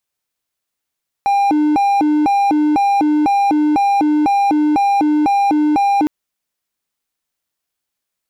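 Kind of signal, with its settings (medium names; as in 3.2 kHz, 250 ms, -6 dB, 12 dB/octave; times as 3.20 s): siren hi-lo 301–801 Hz 2 per s triangle -9 dBFS 4.81 s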